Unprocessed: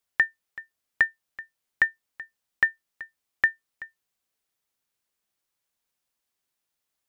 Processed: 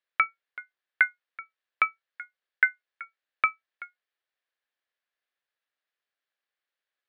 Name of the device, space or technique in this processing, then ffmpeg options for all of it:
voice changer toy: -af "aeval=exprs='val(0)*sin(2*PI*400*n/s+400*0.3/0.59*sin(2*PI*0.59*n/s))':c=same,highpass=510,equalizer=f=540:t=q:w=4:g=3,equalizer=f=910:t=q:w=4:g=-4,equalizer=f=1700:t=q:w=4:g=8,lowpass=f=4100:w=0.5412,lowpass=f=4100:w=1.3066"

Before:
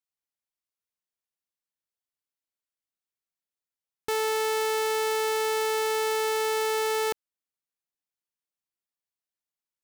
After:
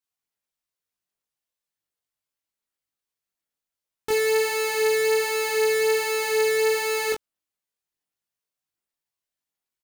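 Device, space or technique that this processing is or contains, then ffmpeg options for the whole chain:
double-tracked vocal: -filter_complex "[0:a]asplit=2[s0][s1];[s1]adelay=21,volume=0.75[s2];[s0][s2]amix=inputs=2:normalize=0,flanger=delay=19:depth=2.1:speed=1.3,volume=1.78"

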